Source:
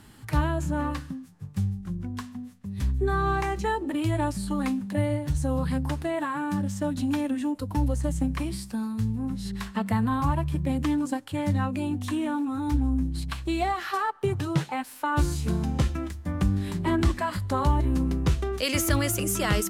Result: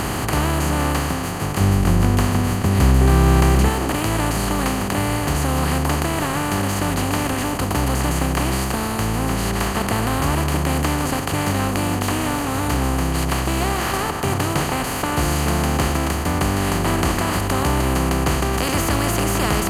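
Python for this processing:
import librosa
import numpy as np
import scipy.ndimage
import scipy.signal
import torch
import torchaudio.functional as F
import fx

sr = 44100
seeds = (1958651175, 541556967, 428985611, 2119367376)

y = fx.bin_compress(x, sr, power=0.2)
y = fx.low_shelf(y, sr, hz=260.0, db=9.0, at=(1.6, 3.69))
y = y * librosa.db_to_amplitude(-4.0)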